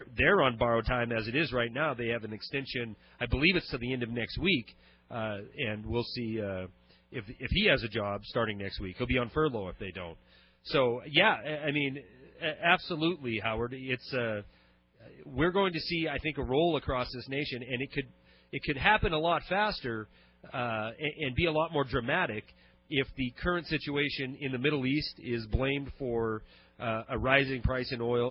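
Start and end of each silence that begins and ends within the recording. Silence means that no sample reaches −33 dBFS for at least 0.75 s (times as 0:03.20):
0:14.40–0:15.36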